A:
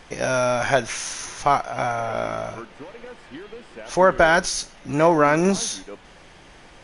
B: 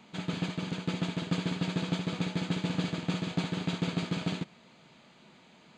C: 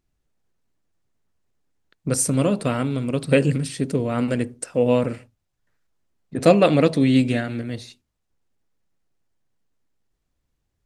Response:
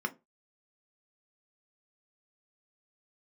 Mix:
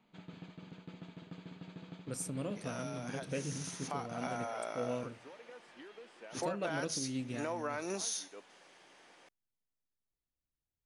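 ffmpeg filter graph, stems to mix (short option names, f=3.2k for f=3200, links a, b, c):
-filter_complex "[0:a]highpass=310,acompressor=threshold=-23dB:ratio=2.5,adynamicequalizer=threshold=0.00891:dfrequency=3800:dqfactor=0.7:tfrequency=3800:tqfactor=0.7:attack=5:release=100:ratio=0.375:range=3:mode=boostabove:tftype=highshelf,adelay=2450,volume=-12dB,afade=t=in:st=3.5:d=0.57:silence=0.375837[a];[1:a]lowpass=f=2.8k:p=1,acompressor=threshold=-32dB:ratio=2,volume=-14.5dB[b];[2:a]volume=-19dB[c];[a][b][c]amix=inputs=3:normalize=0,alimiter=level_in=1.5dB:limit=-24dB:level=0:latency=1:release=286,volume=-1.5dB"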